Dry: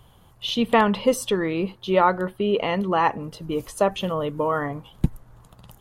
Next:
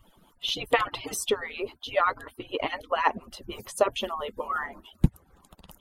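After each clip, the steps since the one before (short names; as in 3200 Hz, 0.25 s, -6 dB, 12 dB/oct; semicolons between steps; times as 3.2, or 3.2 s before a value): median-filter separation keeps percussive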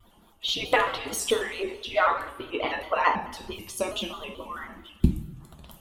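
two-slope reverb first 0.61 s, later 2.2 s, from -19 dB, DRR 2 dB; spectral gain 3.52–5.4, 380–2200 Hz -9 dB; shaped vibrato square 4.6 Hz, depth 100 cents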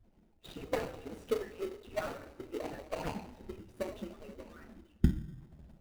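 median filter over 41 samples; in parallel at -9 dB: sample-rate reducer 1700 Hz, jitter 0%; on the sum: gain -8 dB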